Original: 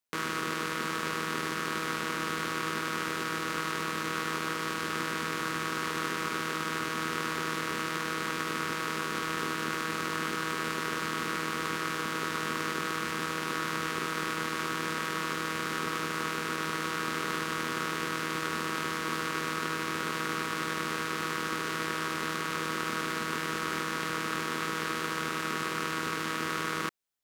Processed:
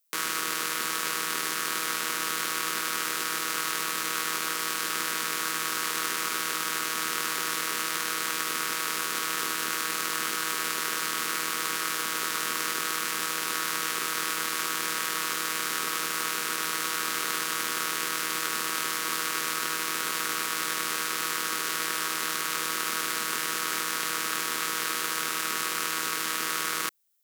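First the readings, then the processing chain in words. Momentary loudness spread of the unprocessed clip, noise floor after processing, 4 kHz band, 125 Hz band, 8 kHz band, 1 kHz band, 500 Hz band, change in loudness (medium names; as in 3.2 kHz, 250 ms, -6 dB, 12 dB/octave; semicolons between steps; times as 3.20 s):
0 LU, -32 dBFS, +6.0 dB, -10.0 dB, +11.5 dB, +0.5 dB, -3.0 dB, +4.0 dB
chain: RIAA curve recording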